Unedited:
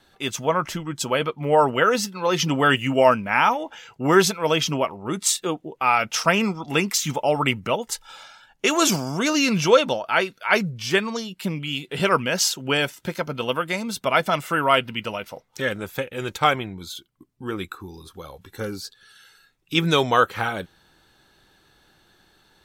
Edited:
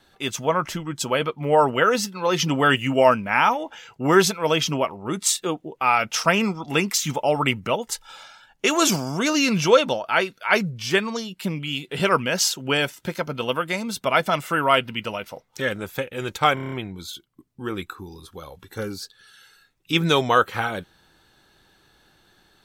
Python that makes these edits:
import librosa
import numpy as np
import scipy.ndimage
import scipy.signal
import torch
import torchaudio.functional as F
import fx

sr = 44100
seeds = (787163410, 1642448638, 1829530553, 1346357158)

y = fx.edit(x, sr, fx.stutter(start_s=16.54, slice_s=0.03, count=7), tone=tone)